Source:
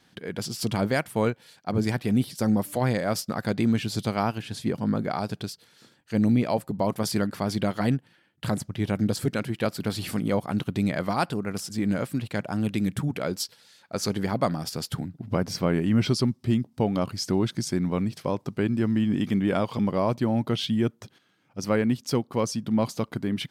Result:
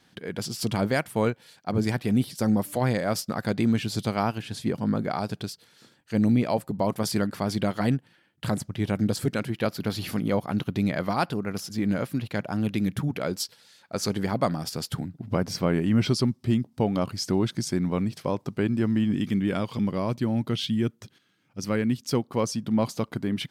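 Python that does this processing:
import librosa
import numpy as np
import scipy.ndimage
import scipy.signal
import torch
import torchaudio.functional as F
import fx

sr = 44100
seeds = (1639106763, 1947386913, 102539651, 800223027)

y = fx.peak_eq(x, sr, hz=8200.0, db=-10.5, octaves=0.23, at=(9.5, 13.21))
y = fx.peak_eq(y, sr, hz=740.0, db=-6.5, octaves=1.6, at=(19.11, 22.13))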